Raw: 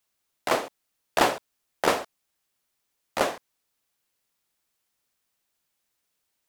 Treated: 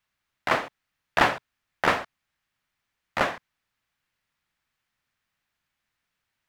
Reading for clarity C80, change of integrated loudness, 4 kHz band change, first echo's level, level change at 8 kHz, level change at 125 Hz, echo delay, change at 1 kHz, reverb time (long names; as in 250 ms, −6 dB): no reverb audible, +1.0 dB, −1.0 dB, no echo audible, −8.0 dB, +5.0 dB, no echo audible, +1.0 dB, no reverb audible